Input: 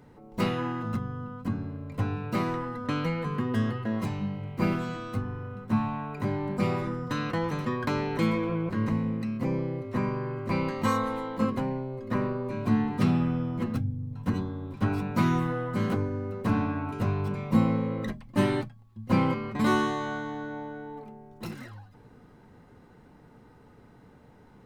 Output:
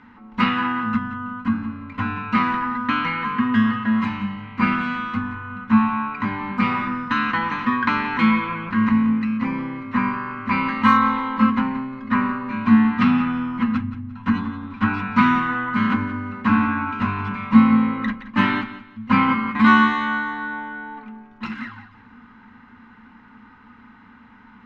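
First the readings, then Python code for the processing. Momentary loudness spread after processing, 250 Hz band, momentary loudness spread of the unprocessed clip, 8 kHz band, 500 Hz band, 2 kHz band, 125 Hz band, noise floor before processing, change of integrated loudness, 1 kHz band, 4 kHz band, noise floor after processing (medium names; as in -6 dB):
13 LU, +9.0 dB, 11 LU, no reading, -6.5 dB, +14.5 dB, -0.5 dB, -55 dBFS, +8.5 dB, +12.0 dB, +8.5 dB, -48 dBFS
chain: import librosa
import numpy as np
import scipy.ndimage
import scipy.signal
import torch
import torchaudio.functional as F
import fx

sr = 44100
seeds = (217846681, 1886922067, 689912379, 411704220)

p1 = fx.curve_eq(x, sr, hz=(100.0, 150.0, 230.0, 350.0, 630.0, 960.0, 1400.0, 2800.0, 7000.0, 11000.0), db=(0, -10, 14, -7, -7, 12, 15, 12, -8, -26))
y = p1 + fx.echo_feedback(p1, sr, ms=175, feedback_pct=28, wet_db=-14.0, dry=0)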